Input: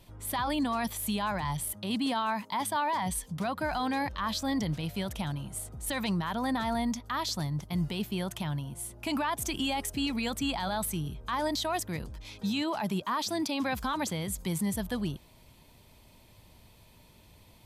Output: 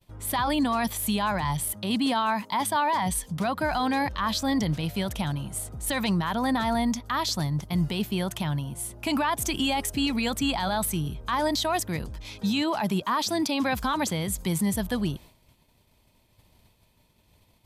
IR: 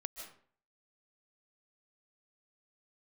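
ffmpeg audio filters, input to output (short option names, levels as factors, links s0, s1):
-af "agate=range=0.0224:threshold=0.00398:ratio=3:detection=peak,volume=1.78"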